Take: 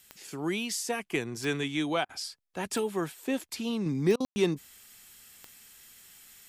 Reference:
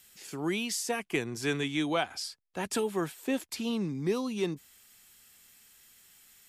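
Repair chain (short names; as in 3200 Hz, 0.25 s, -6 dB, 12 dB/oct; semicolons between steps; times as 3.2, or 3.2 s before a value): de-click; room tone fill 4.25–4.36; interpolate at 2.05/4.16, 41 ms; gain 0 dB, from 3.86 s -5 dB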